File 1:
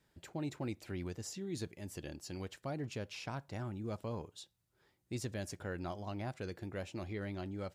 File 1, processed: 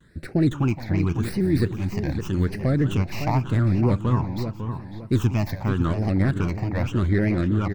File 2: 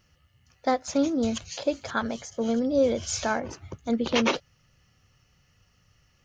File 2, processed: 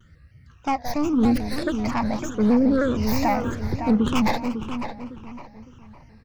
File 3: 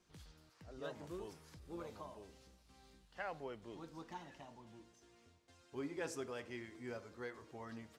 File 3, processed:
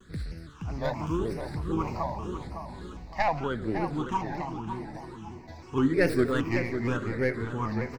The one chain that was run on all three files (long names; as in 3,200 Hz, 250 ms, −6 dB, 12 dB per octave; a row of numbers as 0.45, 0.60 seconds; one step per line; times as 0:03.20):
stylus tracing distortion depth 0.23 ms
high-shelf EQ 2,600 Hz −11 dB
in parallel at +1 dB: brickwall limiter −23.5 dBFS
on the sum: repeating echo 174 ms, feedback 34%, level −15 dB
sine wavefolder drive 4 dB, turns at −9.5 dBFS
all-pass phaser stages 8, 0.86 Hz, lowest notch 410–1,000 Hz
feedback echo with a low-pass in the loop 555 ms, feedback 35%, low-pass 2,900 Hz, level −8 dB
pitch modulation by a square or saw wave square 3.2 Hz, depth 100 cents
normalise the peak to −9 dBFS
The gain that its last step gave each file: +6.5, −2.0, +8.5 decibels